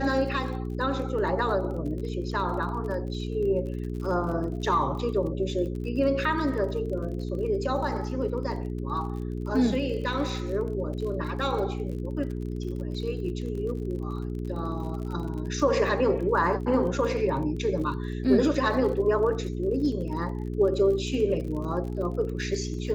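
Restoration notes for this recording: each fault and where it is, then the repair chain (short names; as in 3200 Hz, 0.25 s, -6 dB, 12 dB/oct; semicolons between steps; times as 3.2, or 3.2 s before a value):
crackle 38/s -36 dBFS
hum 60 Hz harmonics 7 -32 dBFS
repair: de-click; de-hum 60 Hz, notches 7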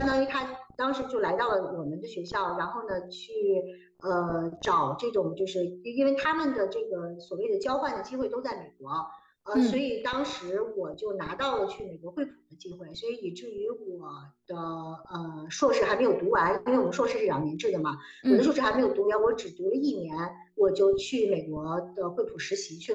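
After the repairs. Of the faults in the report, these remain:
none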